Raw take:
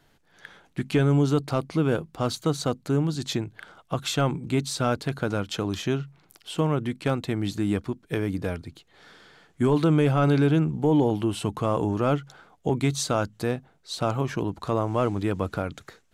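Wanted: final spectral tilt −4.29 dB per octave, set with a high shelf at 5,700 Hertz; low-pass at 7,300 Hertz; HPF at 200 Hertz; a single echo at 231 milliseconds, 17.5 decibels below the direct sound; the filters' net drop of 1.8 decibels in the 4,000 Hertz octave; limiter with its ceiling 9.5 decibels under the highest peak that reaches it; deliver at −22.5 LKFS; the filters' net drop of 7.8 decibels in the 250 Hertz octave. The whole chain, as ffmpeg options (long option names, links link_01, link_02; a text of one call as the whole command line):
ffmpeg -i in.wav -af "highpass=200,lowpass=7300,equalizer=frequency=250:width_type=o:gain=-8.5,equalizer=frequency=4000:width_type=o:gain=-4.5,highshelf=frequency=5700:gain=7.5,alimiter=limit=-22dB:level=0:latency=1,aecho=1:1:231:0.133,volume=12dB" out.wav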